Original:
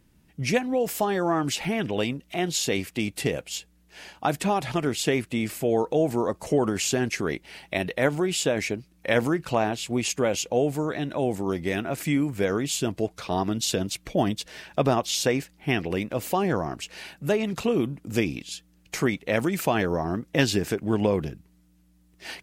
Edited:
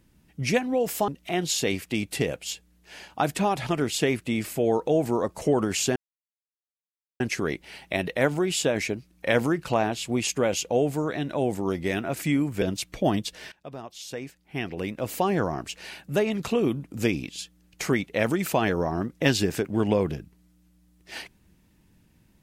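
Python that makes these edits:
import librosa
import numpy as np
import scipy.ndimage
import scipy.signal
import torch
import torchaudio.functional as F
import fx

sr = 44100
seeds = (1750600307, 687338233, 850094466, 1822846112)

y = fx.edit(x, sr, fx.cut(start_s=1.08, length_s=1.05),
    fx.insert_silence(at_s=7.01, length_s=1.24),
    fx.cut(start_s=12.43, length_s=1.32),
    fx.fade_in_from(start_s=14.65, length_s=1.68, curve='qua', floor_db=-18.5), tone=tone)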